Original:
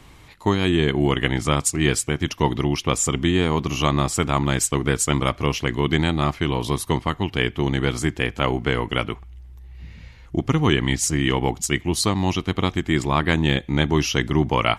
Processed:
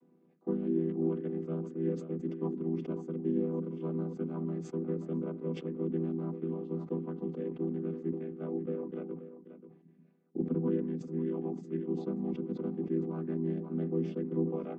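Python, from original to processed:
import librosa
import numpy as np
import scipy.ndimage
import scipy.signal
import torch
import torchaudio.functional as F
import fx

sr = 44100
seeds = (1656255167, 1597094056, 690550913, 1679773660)

y = fx.chord_vocoder(x, sr, chord='minor triad', root=52)
y = fx.bandpass_q(y, sr, hz=330.0, q=2.0)
y = y + 10.0 ** (-12.5 / 20.0) * np.pad(y, (int(533 * sr / 1000.0), 0))[:len(y)]
y = fx.sustainer(y, sr, db_per_s=87.0)
y = F.gain(torch.from_numpy(y), -6.5).numpy()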